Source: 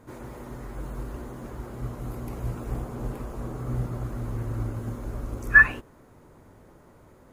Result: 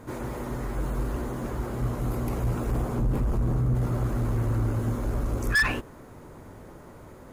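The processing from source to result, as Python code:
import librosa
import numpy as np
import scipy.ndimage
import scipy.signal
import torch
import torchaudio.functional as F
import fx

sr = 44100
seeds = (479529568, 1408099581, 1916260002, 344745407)

p1 = fx.bass_treble(x, sr, bass_db=10, treble_db=-1, at=(2.98, 3.75))
p2 = fx.over_compress(p1, sr, threshold_db=-29.0, ratio=-1.0)
p3 = p1 + (p2 * librosa.db_to_amplitude(-1.0))
y = 10.0 ** (-18.5 / 20.0) * np.tanh(p3 / 10.0 ** (-18.5 / 20.0))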